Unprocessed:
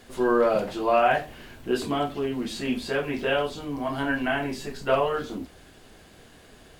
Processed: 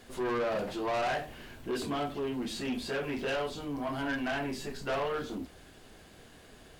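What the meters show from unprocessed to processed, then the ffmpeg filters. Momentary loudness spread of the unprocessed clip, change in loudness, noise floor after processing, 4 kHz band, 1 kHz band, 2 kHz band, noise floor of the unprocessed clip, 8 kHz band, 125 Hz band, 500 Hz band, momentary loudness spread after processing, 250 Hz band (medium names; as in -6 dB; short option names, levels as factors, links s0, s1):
11 LU, -8.0 dB, -55 dBFS, -5.0 dB, -9.0 dB, -7.0 dB, -52 dBFS, -3.0 dB, -5.5 dB, -8.5 dB, 6 LU, -6.5 dB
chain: -af "asoftclip=type=tanh:threshold=0.0562,volume=0.708"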